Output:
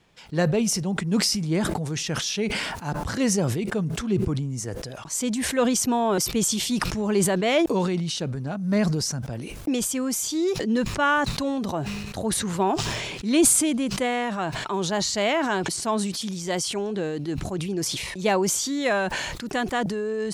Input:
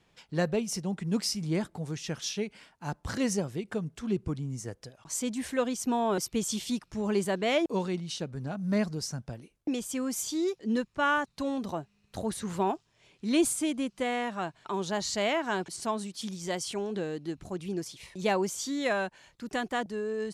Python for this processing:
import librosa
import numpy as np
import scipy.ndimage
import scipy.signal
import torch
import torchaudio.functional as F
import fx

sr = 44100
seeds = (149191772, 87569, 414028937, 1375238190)

y = fx.sustainer(x, sr, db_per_s=29.0)
y = y * librosa.db_to_amplitude(5.0)